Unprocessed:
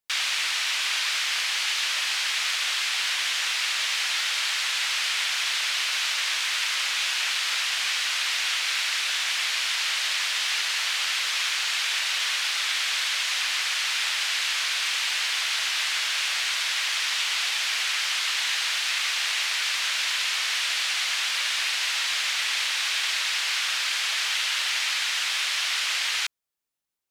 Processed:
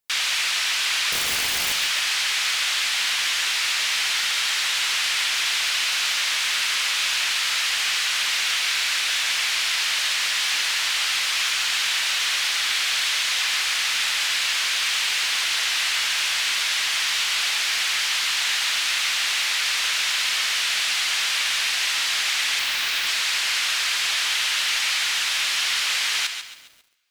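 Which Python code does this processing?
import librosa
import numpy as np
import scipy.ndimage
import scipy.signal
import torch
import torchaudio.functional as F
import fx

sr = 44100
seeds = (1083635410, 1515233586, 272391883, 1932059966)

p1 = fx.median_filter(x, sr, points=5, at=(22.59, 23.07))
p2 = fx.high_shelf(p1, sr, hz=8800.0, db=3.5)
p3 = fx.overflow_wrap(p2, sr, gain_db=18.5, at=(1.12, 1.73))
p4 = p3 + fx.echo_single(p3, sr, ms=146, db=-11.0, dry=0)
p5 = fx.rev_double_slope(p4, sr, seeds[0], early_s=0.59, late_s=2.2, knee_db=-18, drr_db=17.5)
p6 = np.clip(p5, -10.0 ** (-27.5 / 20.0), 10.0 ** (-27.5 / 20.0))
p7 = p5 + (p6 * librosa.db_to_amplitude(-7.0))
y = fx.echo_crushed(p7, sr, ms=136, feedback_pct=55, bits=7, wet_db=-12)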